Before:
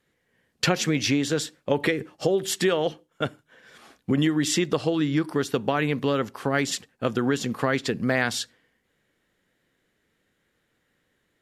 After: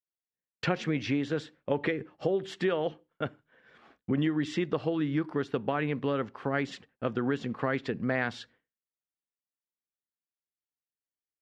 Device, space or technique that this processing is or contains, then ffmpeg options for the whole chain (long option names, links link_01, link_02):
hearing-loss simulation: -af "lowpass=2600,agate=range=-33dB:threshold=-51dB:ratio=3:detection=peak,volume=-5.5dB"